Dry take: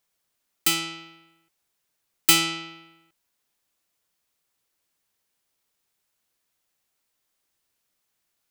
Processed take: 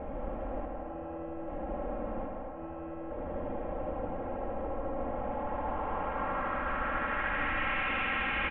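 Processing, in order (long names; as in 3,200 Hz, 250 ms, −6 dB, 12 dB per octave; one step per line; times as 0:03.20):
linear delta modulator 16 kbit/s, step −31 dBFS
comb filter 3.7 ms, depth 86%
compressor whose output falls as the input rises −36 dBFS, ratio −0.5
low-shelf EQ 230 Hz +7 dB
on a send: echo machine with several playback heads 77 ms, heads all three, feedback 40%, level −7 dB
on the sum: low-pass filter sweep 610 Hz → 2,400 Hz, 0:04.97–0:07.89
low-shelf EQ 66 Hz +6 dB
delay with a band-pass on its return 286 ms, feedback 79%, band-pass 940 Hz, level −6 dB
level −5.5 dB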